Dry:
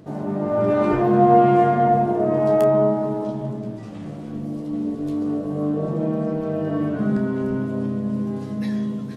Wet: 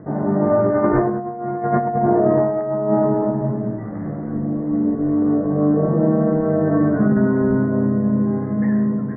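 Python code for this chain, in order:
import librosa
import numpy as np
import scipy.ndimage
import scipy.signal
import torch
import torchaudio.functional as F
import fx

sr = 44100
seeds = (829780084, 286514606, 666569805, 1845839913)

y = scipy.signal.sosfilt(scipy.signal.butter(16, 2000.0, 'lowpass', fs=sr, output='sos'), x)
y = fx.over_compress(y, sr, threshold_db=-20.0, ratio=-0.5)
y = F.gain(torch.from_numpy(y), 4.5).numpy()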